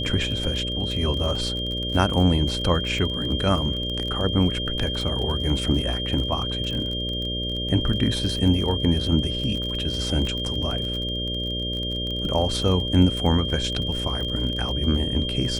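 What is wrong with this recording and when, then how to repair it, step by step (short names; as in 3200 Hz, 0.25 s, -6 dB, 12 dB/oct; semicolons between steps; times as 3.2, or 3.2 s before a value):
buzz 60 Hz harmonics 10 -30 dBFS
crackle 28/s -28 dBFS
tone 3200 Hz -28 dBFS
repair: de-click; de-hum 60 Hz, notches 10; notch 3200 Hz, Q 30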